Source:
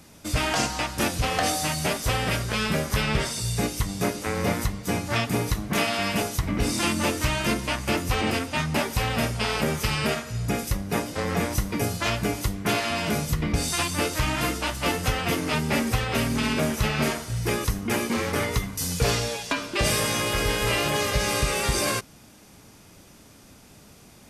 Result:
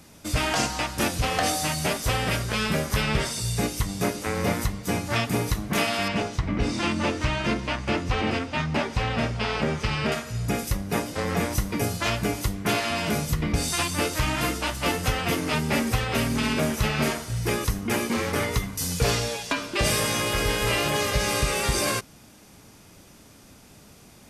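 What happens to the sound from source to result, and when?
6.08–10.12 air absorption 110 m

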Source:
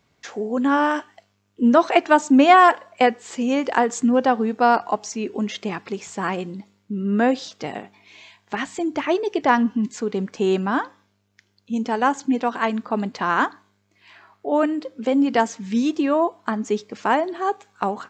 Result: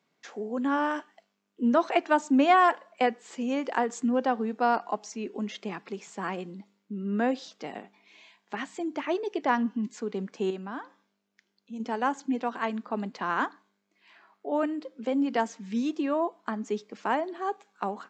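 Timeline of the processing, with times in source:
10.5–11.8 compressor 1.5:1, threshold -38 dBFS
whole clip: steep high-pass 160 Hz 36 dB/oct; high shelf 6400 Hz -4.5 dB; gain -8 dB

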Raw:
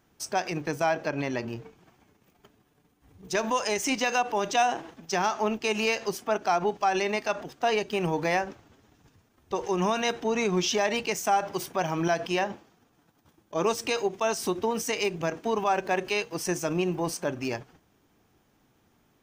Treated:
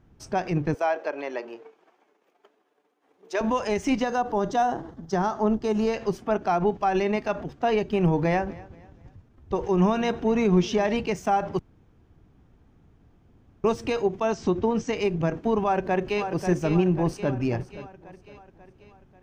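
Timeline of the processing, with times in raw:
0.74–3.41 HPF 410 Hz 24 dB/oct
4.03–5.94 bell 2500 Hz -14.5 dB 0.48 oct
8.02–10.96 feedback echo 0.24 s, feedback 37%, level -21 dB
11.59–13.64 room tone
14.33–14.96 steep low-pass 7700 Hz 72 dB/oct
15.63–16.26 echo throw 0.54 s, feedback 55%, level -7.5 dB
16.93–17.34 echo throw 0.52 s, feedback 30%, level -16 dB
whole clip: RIAA curve playback

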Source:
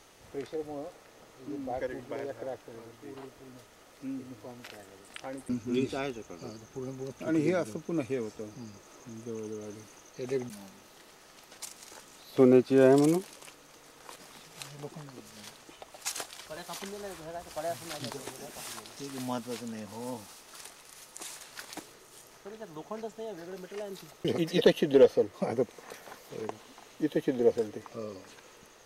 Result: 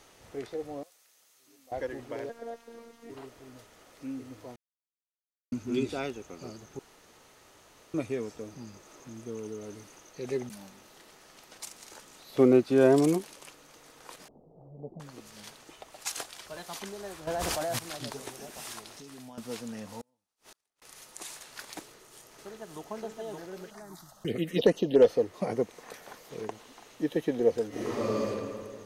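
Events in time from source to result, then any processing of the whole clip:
0.83–1.72 pre-emphasis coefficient 0.97
2.29–3.1 robotiser 232 Hz
4.56–5.52 mute
6.79–7.94 room tone
14.28–15 steep low-pass 710 Hz
17.27–17.79 fast leveller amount 100%
18.91–19.38 compressor 12:1, threshold -43 dBFS
20.01–20.82 flipped gate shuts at -40 dBFS, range -39 dB
21.81–22.89 echo throw 0.57 s, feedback 55%, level -2.5 dB
23.7–25.02 envelope phaser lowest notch 350 Hz, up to 3500 Hz, full sweep at -18.5 dBFS
27.68–28.24 reverb throw, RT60 2 s, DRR -11.5 dB

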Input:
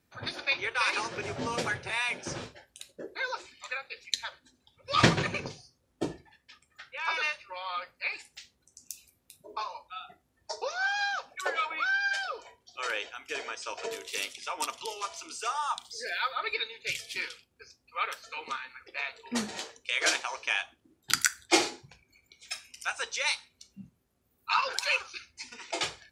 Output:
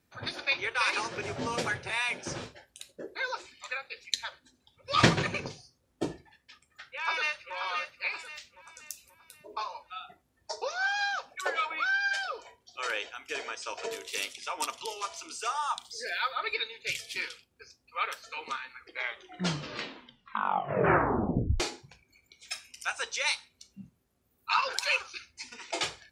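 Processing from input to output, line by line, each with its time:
6.81–7.55 echo throw 0.53 s, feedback 40%, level -6.5 dB
18.72 tape stop 2.88 s

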